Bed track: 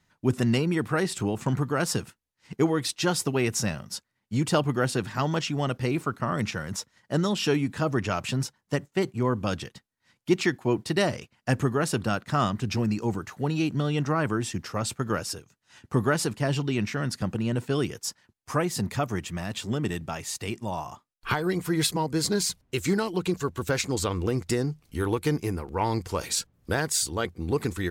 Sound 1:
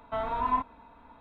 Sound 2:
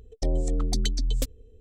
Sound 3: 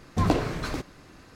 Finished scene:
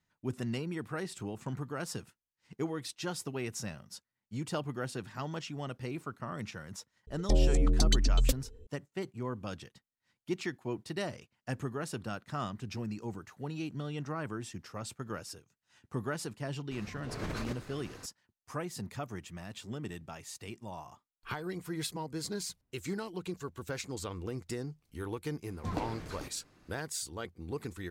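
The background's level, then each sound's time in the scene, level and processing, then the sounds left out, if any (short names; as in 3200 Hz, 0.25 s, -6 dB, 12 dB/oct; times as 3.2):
bed track -12 dB
7.07 add 2
16.71 add 3 -6.5 dB + negative-ratio compressor -35 dBFS
25.47 add 3 -13 dB
not used: 1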